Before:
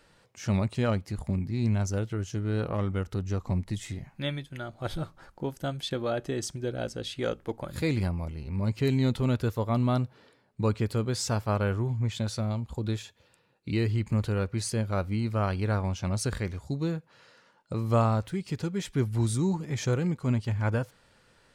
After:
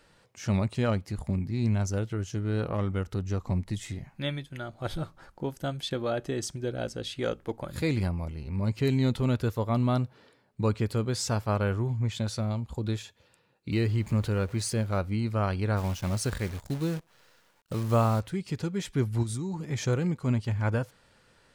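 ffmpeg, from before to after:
-filter_complex "[0:a]asettb=1/sr,asplit=3[a][b][c];[a]atrim=end=13.724[d];[b]atrim=start=13.72:end=14.98,asetpts=PTS-STARTPTS,afade=t=in:d=0.004:c=qsin,afade=t=out:st=1.256:d=0.004:c=qsin,aeval=exprs='val(0)+0.5*0.00631*sgn(val(0))':c=same[e];[c]atrim=start=14.976[f];[d][e]acrossfade=d=0.004:c1=hsin:c2=qsin[g];[g][f]acrossfade=d=0.004:c1=qsin:c2=hsin,asplit=3[h][i][j];[h]afade=t=out:st=15.76:d=0.02[k];[i]acrusher=bits=8:dc=4:mix=0:aa=0.000001,afade=t=in:st=15.76:d=0.02,afade=t=out:st=18.19:d=0.02[l];[j]afade=t=in:st=18.19:d=0.02[m];[k][l][m]amix=inputs=3:normalize=0,asplit=3[n][o][p];[n]afade=t=out:st=19.22:d=0.02[q];[o]acompressor=threshold=-29dB:ratio=6:attack=3.2:release=140:knee=1:detection=peak,afade=t=in:st=19.22:d=0.02,afade=t=out:st=19.66:d=0.02[r];[p]afade=t=in:st=19.66:d=0.02[s];[q][r][s]amix=inputs=3:normalize=0"

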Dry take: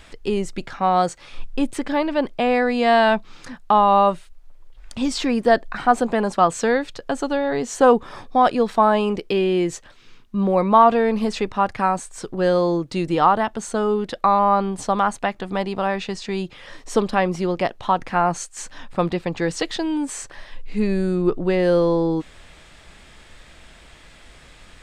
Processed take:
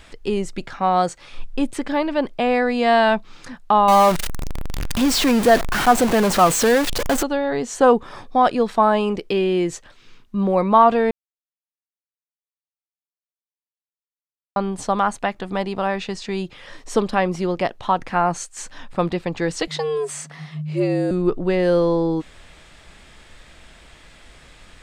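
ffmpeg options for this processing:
-filter_complex "[0:a]asettb=1/sr,asplit=3[a][b][c];[a]atrim=end=3.884[d];[b]atrim=start=3.88:end=7.23,asetpts=PTS-STARTPTS,afade=t=in:d=0.004:c=qsin,afade=t=out:st=3.346:d=0.004:c=qsin,aeval=exprs='val(0)+0.5*0.133*sgn(val(0))':c=same[e];[c]atrim=start=7.226[f];[d][e]acrossfade=d=0.004:c1=hsin:c2=qsin[g];[g][f]acrossfade=d=0.004:c1=qsin:c2=hsin,asettb=1/sr,asplit=3[h][i][j];[h]atrim=end=19.674[k];[i]atrim=start=19.67:end=21.11,asetpts=PTS-STARTPTS,afade=t=in:d=0.004:c=qsin,afade=t=out:st=1.436:d=0.004:c=qsin,afreqshift=140[l];[j]atrim=start=21.106[m];[k][l]acrossfade=d=0.004:c1=hsin:c2=qsin[n];[n][m]acrossfade=d=0.004:c1=qsin:c2=hsin,asplit=3[o][p][q];[o]atrim=end=11.11,asetpts=PTS-STARTPTS,afade=t=out:st=11.106:d=0.004:c=hsin[r];[p]atrim=start=11.11:end=14.56,asetpts=PTS-STARTPTS,volume=0[s];[q]atrim=start=14.56,asetpts=PTS-STARTPTS,afade=t=in:d=0.004:c=hsin[t];[r][s][t]concat=n=3:v=0:a=1"

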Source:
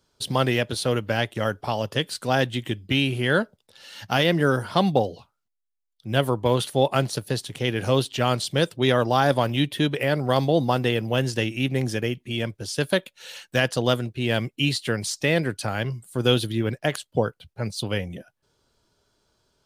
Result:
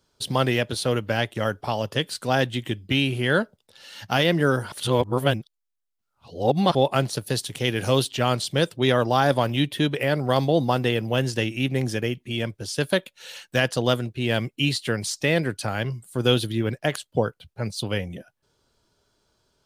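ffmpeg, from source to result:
-filter_complex "[0:a]asettb=1/sr,asplit=3[a][b][c];[a]atrim=end=7.264[d];[b]atrim=start=7.26:end=8.11,asetpts=PTS-STARTPTS,afade=t=in:d=0.004:c=qsin,afade=t=out:st=0.846:d=0.004:c=qsin,highshelf=f=3.9k:g=6.5[e];[c]atrim=start=8.106[f];[d][e]acrossfade=d=0.004:c1=hsin:c2=qsin[g];[g][f]acrossfade=d=0.004:c1=qsin:c2=hsin,asplit=3[h][i][j];[h]atrim=end=4.722[k];[i]atrim=start=4.718:end=6.752,asetpts=PTS-STARTPTS,areverse[l];[j]atrim=start=6.748[m];[k][l]acrossfade=d=0.004:c1=hsin:c2=hsin[n];[n][m]acrossfade=d=0.004:c1=hsin:c2=hsin"

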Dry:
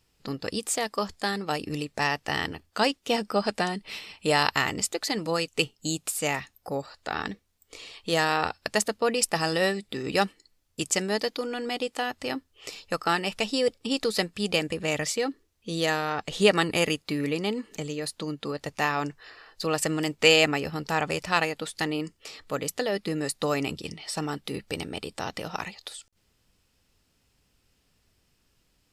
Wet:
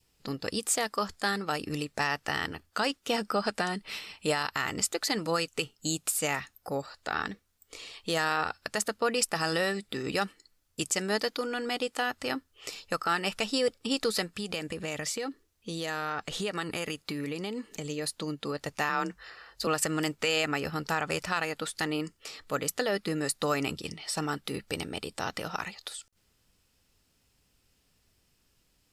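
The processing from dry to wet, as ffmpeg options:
-filter_complex "[0:a]asettb=1/sr,asplit=3[a][b][c];[a]atrim=end=14.344[d];[b]atrim=start=14.34:end=17.9,asetpts=PTS-STARTPTS,afade=t=in:d=0.004:c=qsin,afade=t=out:st=3.556:d=0.004:c=qsin,acompressor=threshold=-29dB:ratio=4:attack=3.2:release=140:knee=1:detection=peak[e];[c]atrim=start=17.896[f];[d][e]acrossfade=d=0.004:c1=hsin:c2=qsin[g];[g][f]acrossfade=d=0.004:c1=qsin:c2=hsin,asettb=1/sr,asplit=3[h][i][j];[h]atrim=end=18.894[k];[i]atrim=start=18.89:end=19.67,asetpts=PTS-STARTPTS,afade=t=in:d=0.004:c=qsin,afade=t=out:st=0.776:d=0.004:c=qsin,afreqshift=35[l];[j]atrim=start=19.666[m];[k][l]acrossfade=d=0.004:c1=hsin:c2=qsin[n];[n][m]acrossfade=d=0.004:c1=qsin:c2=hsin,adynamicequalizer=threshold=0.00631:dfrequency=1400:dqfactor=2.4:tfrequency=1400:tqfactor=2.4:attack=5:release=100:ratio=0.375:range=3.5:mode=boostabove:tftype=bell,alimiter=limit=-15dB:level=0:latency=1:release=110,highshelf=f=6.1k:g=4.5,volume=-2dB"

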